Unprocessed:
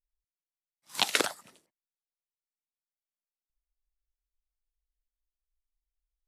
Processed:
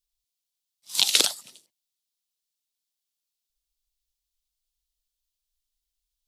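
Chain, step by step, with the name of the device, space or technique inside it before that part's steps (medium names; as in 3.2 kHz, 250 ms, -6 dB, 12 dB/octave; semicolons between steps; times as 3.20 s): over-bright horn tweeter (resonant high shelf 2.5 kHz +12 dB, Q 1.5; peak limiter -1 dBFS, peak gain reduction 7 dB); trim -1 dB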